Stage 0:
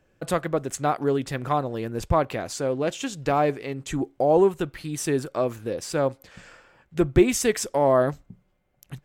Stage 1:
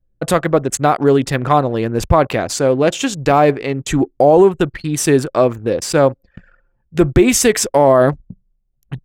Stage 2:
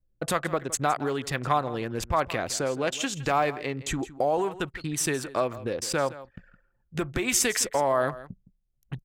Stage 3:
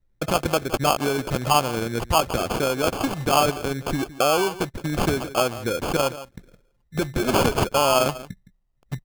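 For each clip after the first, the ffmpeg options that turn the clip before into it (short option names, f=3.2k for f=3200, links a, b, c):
-af "anlmdn=0.398,alimiter=level_in=12.5dB:limit=-1dB:release=50:level=0:latency=1,volume=-1dB"
-filter_complex "[0:a]acrossover=split=810|3100[a][b][c];[a]acompressor=threshold=-21dB:ratio=6[d];[d][b][c]amix=inputs=3:normalize=0,aecho=1:1:164:0.15,volume=-7.5dB"
-af "acrusher=samples=23:mix=1:aa=0.000001,volume=5dB"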